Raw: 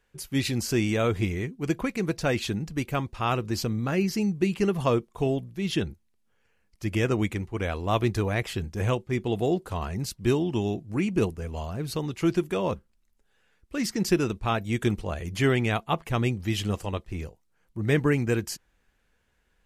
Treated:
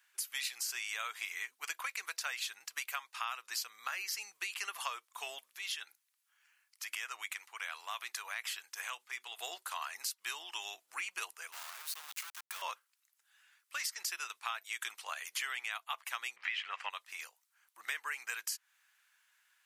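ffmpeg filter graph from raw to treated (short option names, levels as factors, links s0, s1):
-filter_complex "[0:a]asettb=1/sr,asplit=3[s0][s1][s2];[s0]atrim=end=5.584[s3];[s1]atrim=start=5.58:end=9.4,asetpts=PTS-STARTPTS,afade=t=in:d=0.004:c=qsin,afade=t=out:st=3.816:d=0.004:c=qsin,lowshelf=f=220:g=-10,bandreject=f=50:t=h:w=6,bandreject=f=100:t=h:w=6,bandreject=f=150:t=h:w=6,bandreject=f=200:t=h:w=6,bandreject=f=250:t=h:w=6,bandreject=f=300:t=h:w=6,acompressor=threshold=0.0158:ratio=2:attack=3.2:release=140:knee=1:detection=peak[s4];[s2]atrim=start=9.396[s5];[s3][s4]acrossfade=d=0.004:c1=hsin:c2=qsin[s6];[s6][s5]acrossfade=d=0.004:c1=qsin:c2=hsin,asettb=1/sr,asplit=3[s7][s8][s9];[s7]atrim=end=11.524[s10];[s8]atrim=start=11.52:end=12.62,asetpts=PTS-STARTPTS,afade=t=in:d=0.004:c=qsin,afade=t=out:st=1.096:d=0.004:c=qsin,highpass=f=97:p=1,acompressor=threshold=0.0158:ratio=16:attack=3.2:release=140:knee=1:detection=peak,aeval=exprs='val(0)*gte(abs(val(0)),0.00891)':c=same[s11];[s9]atrim=start=12.616[s12];[s10][s11]acrossfade=d=0.004:c1=hsin:c2=qsin[s13];[s13][s12]acrossfade=d=0.004:c1=qsin:c2=hsin,asettb=1/sr,asplit=3[s14][s15][s16];[s14]atrim=end=16.364[s17];[s15]atrim=start=16.36:end=16.9,asetpts=PTS-STARTPTS,afade=t=in:d=0.004:c=qsin,afade=t=out:st=0.536:d=0.004:c=qsin,lowpass=f=2200:t=q:w=2.2,acontrast=63[s18];[s16]atrim=start=16.896[s19];[s17][s18]acrossfade=d=0.004:c1=hsin:c2=qsin[s20];[s20][s19]acrossfade=d=0.004:c1=qsin:c2=hsin,highpass=f=1100:w=0.5412,highpass=f=1100:w=1.3066,highshelf=f=8000:g=8,acompressor=threshold=0.0126:ratio=6,volume=1.33"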